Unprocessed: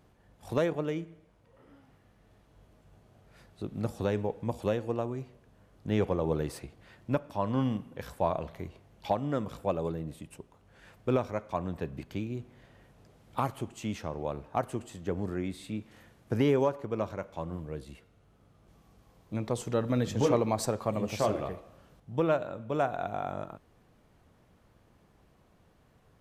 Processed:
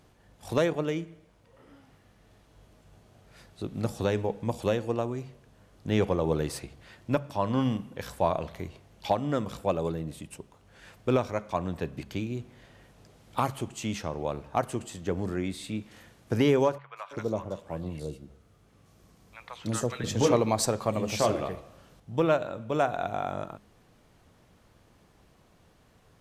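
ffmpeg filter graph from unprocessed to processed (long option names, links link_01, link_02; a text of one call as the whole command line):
ffmpeg -i in.wav -filter_complex "[0:a]asettb=1/sr,asplit=3[link_01][link_02][link_03];[link_01]atrim=end=16.784[link_04];[link_02]atrim=start=16.78:end=20.04,asetpts=PTS-STARTPTS,afade=type=in:duration=0.004:curve=qsin,afade=type=out:start_time=3.256:duration=0.004:curve=qsin,highpass=43,acrossover=split=930|3200[link_05][link_06][link_07];[link_07]adelay=180[link_08];[link_05]adelay=330[link_09];[link_09][link_06][link_08]amix=inputs=3:normalize=0,atrim=end_sample=143766[link_10];[link_03]atrim=start=20.036[link_11];[link_04][link_10]acrossfade=duration=0.004:curve1=hsin:curve2=qsin[link_12];[link_12][link_11]acrossfade=duration=0.004:curve1=qsin:curve2=hsin,equalizer=frequency=6100:width_type=o:width=2.5:gain=5.5,bandreject=frequency=68.22:width_type=h:width=4,bandreject=frequency=136.44:width_type=h:width=4,bandreject=frequency=204.66:width_type=h:width=4,volume=2.5dB" out.wav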